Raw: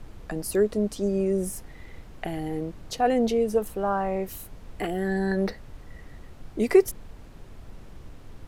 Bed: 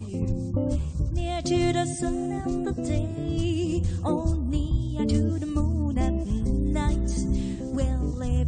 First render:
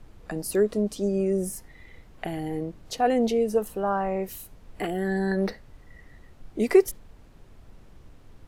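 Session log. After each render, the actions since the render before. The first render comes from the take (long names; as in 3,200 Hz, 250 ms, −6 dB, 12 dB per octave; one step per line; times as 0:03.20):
noise reduction from a noise print 6 dB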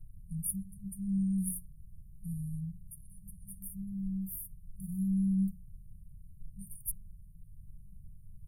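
brick-wall band-stop 200–8,800 Hz
mains-hum notches 60/120/180 Hz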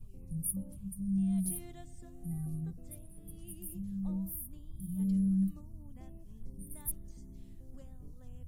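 mix in bed −27.5 dB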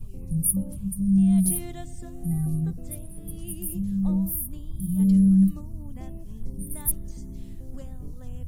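level +12 dB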